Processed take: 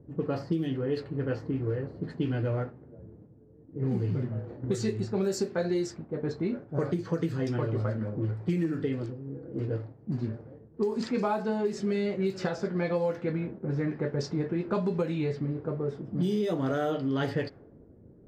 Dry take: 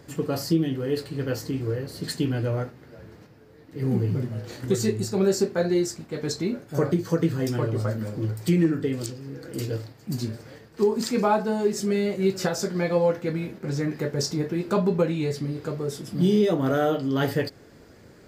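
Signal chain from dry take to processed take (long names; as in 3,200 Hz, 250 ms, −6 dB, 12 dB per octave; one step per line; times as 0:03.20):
low-pass that shuts in the quiet parts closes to 340 Hz, open at −17 dBFS
downward compressor, threshold −23 dBFS, peak gain reduction 7.5 dB
level −1.5 dB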